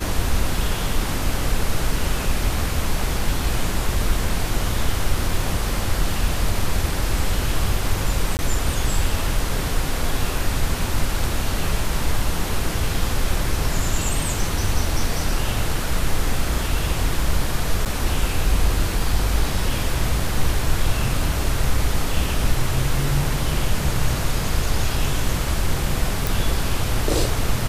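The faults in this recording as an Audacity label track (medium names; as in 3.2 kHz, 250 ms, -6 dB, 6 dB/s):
8.370000	8.390000	dropout 19 ms
17.850000	17.860000	dropout 8.4 ms
26.270000	26.270000	pop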